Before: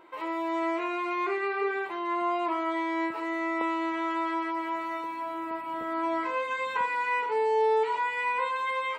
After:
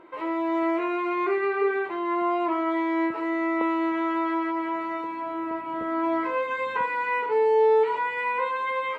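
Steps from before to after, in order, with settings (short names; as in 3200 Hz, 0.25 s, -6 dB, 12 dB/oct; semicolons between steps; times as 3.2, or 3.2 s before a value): LPF 1300 Hz 6 dB/oct; bell 840 Hz -4.5 dB 0.81 oct; gain +7 dB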